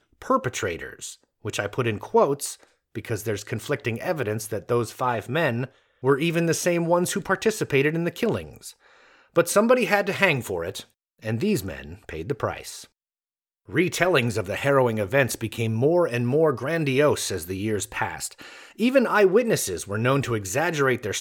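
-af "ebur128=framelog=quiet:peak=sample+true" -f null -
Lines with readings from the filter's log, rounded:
Integrated loudness:
  I:         -23.8 LUFS
  Threshold: -34.4 LUFS
Loudness range:
  LRA:         4.8 LU
  Threshold: -44.5 LUFS
  LRA low:   -27.4 LUFS
  LRA high:  -22.6 LUFS
Sample peak:
  Peak:       -3.7 dBFS
True peak:
  Peak:       -3.7 dBFS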